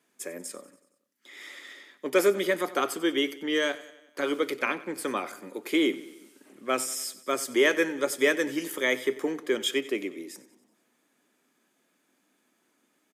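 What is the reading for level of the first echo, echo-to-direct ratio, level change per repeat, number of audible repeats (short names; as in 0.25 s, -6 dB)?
-18.0 dB, -16.5 dB, -5.0 dB, 4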